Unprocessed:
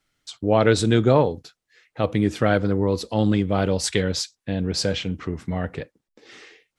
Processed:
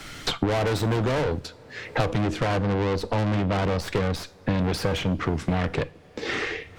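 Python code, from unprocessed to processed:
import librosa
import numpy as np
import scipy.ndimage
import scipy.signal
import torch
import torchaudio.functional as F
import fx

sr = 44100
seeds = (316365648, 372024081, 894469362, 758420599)

y = fx.tracing_dist(x, sr, depth_ms=0.054)
y = fx.high_shelf(y, sr, hz=3000.0, db=-12.0, at=(2.21, 4.59))
y = fx.tube_stage(y, sr, drive_db=30.0, bias=0.75)
y = fx.high_shelf(y, sr, hz=8500.0, db=-7.0)
y = fx.rev_double_slope(y, sr, seeds[0], early_s=0.44, late_s=3.0, knee_db=-20, drr_db=17.5)
y = fx.band_squash(y, sr, depth_pct=100)
y = y * 10.0 ** (8.5 / 20.0)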